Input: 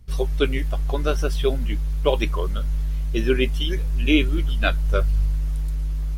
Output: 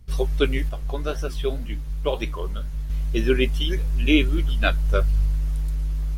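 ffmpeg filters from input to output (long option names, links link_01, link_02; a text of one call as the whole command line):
ffmpeg -i in.wav -filter_complex "[0:a]asettb=1/sr,asplit=3[link_01][link_02][link_03];[link_01]atrim=end=0.694[link_04];[link_02]atrim=start=0.69:end=2.9,asetpts=PTS-STARTPTS,afade=type=in:duration=0.004:curve=qsin,afade=type=out:start_time=2.206:duration=0.004:curve=qsin,flanger=delay=8.1:depth=6.4:regen=-77:speed=1.9:shape=sinusoidal[link_05];[link_03]atrim=start=2.896[link_06];[link_04][link_05]acrossfade=duration=0.004:curve1=hsin:curve2=qsin[link_07];[link_07][link_06]acrossfade=duration=0.004:curve1=qsin:curve2=hsin" out.wav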